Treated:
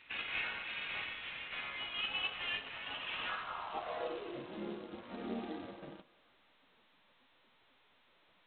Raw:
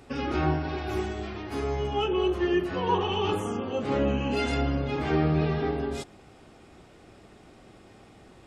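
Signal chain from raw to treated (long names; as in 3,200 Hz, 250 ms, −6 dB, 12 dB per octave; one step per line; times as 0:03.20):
gate on every frequency bin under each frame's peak −15 dB weak
0:02.57–0:03.07: tilt shelving filter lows +6.5 dB, about 870 Hz
soft clipping −28 dBFS, distortion −20 dB
band-pass filter sweep 2,500 Hz → 270 Hz, 0:03.04–0:04.46
feedback echo with a high-pass in the loop 171 ms, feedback 77%, high-pass 560 Hz, level −19 dB
level +6 dB
G.726 16 kbit/s 8,000 Hz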